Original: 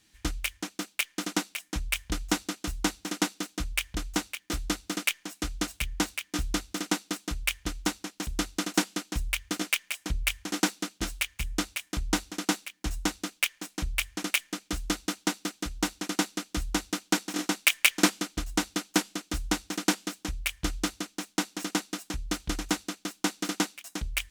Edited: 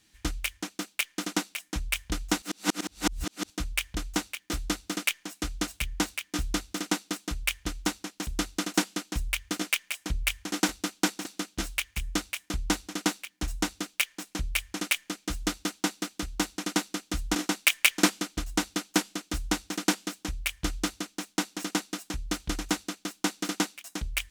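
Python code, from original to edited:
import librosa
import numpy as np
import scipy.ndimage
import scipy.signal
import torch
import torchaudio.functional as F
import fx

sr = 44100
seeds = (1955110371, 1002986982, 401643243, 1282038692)

y = fx.edit(x, sr, fx.reverse_span(start_s=2.42, length_s=1.08),
    fx.move(start_s=16.78, length_s=0.57, to_s=10.69), tone=tone)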